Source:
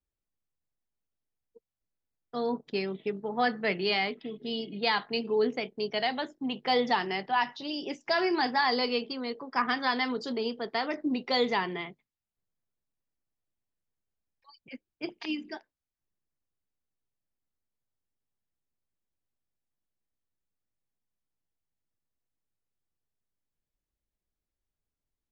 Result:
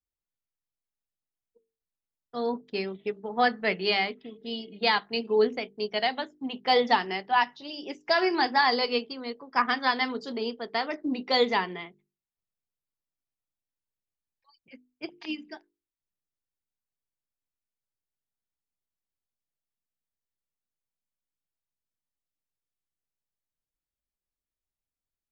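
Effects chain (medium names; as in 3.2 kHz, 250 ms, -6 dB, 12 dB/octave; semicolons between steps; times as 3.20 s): hum notches 50/100/150/200/250/300/350/400/450 Hz; upward expansion 1.5:1, over -46 dBFS; trim +5 dB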